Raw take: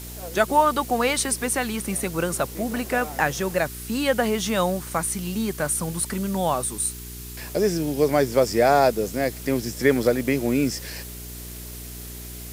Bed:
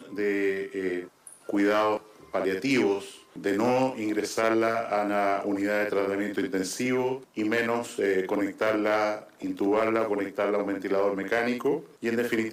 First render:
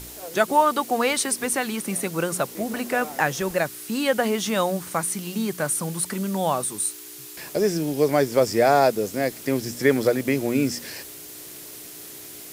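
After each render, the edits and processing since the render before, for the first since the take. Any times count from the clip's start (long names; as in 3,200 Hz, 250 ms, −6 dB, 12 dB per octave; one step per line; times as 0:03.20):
hum removal 60 Hz, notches 4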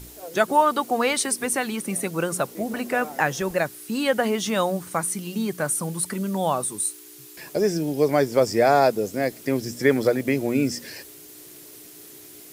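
broadband denoise 6 dB, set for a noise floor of −40 dBFS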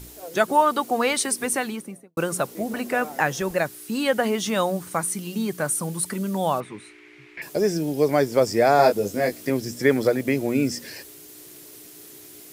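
0:01.55–0:02.17: fade out and dull
0:06.60–0:07.42: low-pass with resonance 2,200 Hz, resonance Q 5.7
0:08.77–0:09.50: double-tracking delay 20 ms −3.5 dB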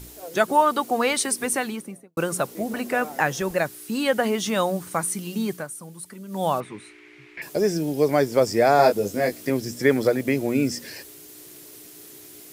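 0:05.51–0:06.44: duck −12 dB, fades 0.16 s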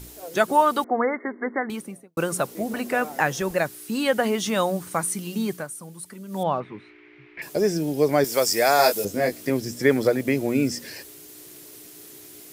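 0:00.84–0:01.70: linear-phase brick-wall band-pass 200–2,200 Hz
0:06.43–0:07.39: high-frequency loss of the air 270 metres
0:08.24–0:09.05: spectral tilt +3.5 dB per octave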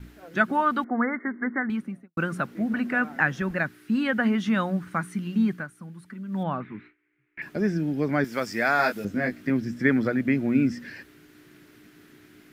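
noise gate with hold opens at −35 dBFS
drawn EQ curve 140 Hz 0 dB, 230 Hz +5 dB, 450 Hz −10 dB, 1,000 Hz −6 dB, 1,500 Hz +4 dB, 8,400 Hz −22 dB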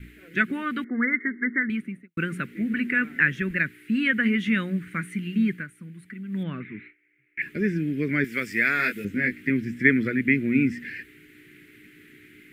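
drawn EQ curve 420 Hz 0 dB, 790 Hz −24 dB, 2,100 Hz +11 dB, 5,500 Hz −9 dB, 8,200 Hz 0 dB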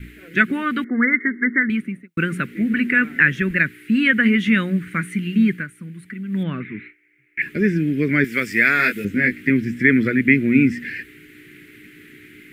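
boost into a limiter +6.5 dB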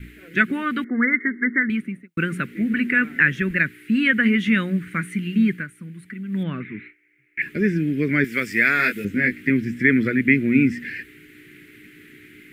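level −2 dB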